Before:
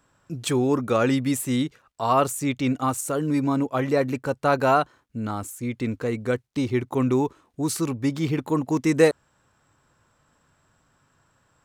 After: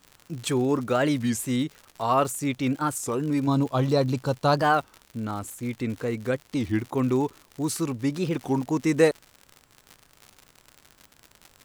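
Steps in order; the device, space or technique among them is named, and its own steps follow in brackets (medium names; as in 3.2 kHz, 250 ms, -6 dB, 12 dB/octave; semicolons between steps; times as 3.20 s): 3.47–4.63 s: ten-band graphic EQ 125 Hz +8 dB, 1 kHz +4 dB, 2 kHz -11 dB, 4 kHz +12 dB; warped LP (warped record 33 1/3 rpm, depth 250 cents; crackle 100 per s -31 dBFS; pink noise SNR 38 dB); trim -2 dB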